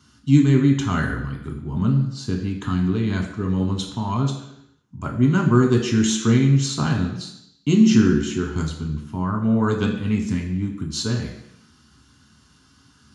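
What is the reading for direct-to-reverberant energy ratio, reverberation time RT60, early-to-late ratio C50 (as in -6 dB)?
0.5 dB, 0.80 s, 7.0 dB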